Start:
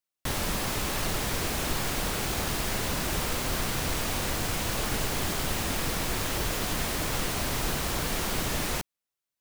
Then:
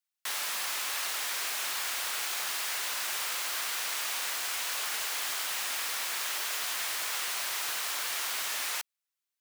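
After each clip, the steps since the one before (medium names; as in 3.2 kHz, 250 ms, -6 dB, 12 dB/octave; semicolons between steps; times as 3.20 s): high-pass 1.2 kHz 12 dB/octave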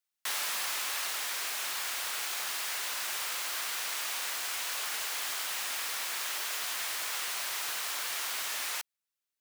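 gain riding 2 s; trim -1.5 dB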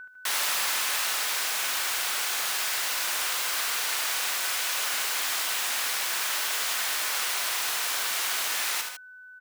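whistle 1.5 kHz -45 dBFS; on a send: multi-tap echo 47/75/143/152/156 ms -12.5/-6.5/-17/-12/-15 dB; on the sum: trim +5 dB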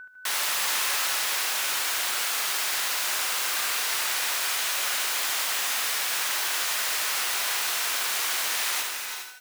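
gated-style reverb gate 450 ms rising, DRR 4.5 dB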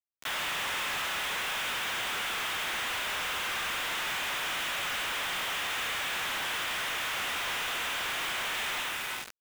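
pre-echo 31 ms -19.5 dB; resampled via 8 kHz; companded quantiser 2-bit; trim -6.5 dB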